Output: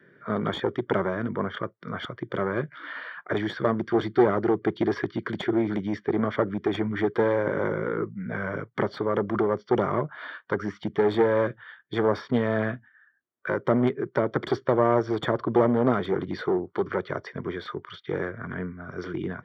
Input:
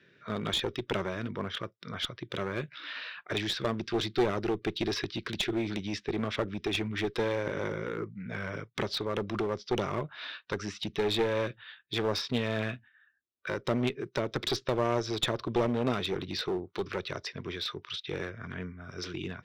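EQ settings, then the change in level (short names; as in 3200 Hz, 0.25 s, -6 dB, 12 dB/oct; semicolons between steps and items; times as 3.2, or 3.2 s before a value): polynomial smoothing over 41 samples; HPF 120 Hz 12 dB/oct; +7.5 dB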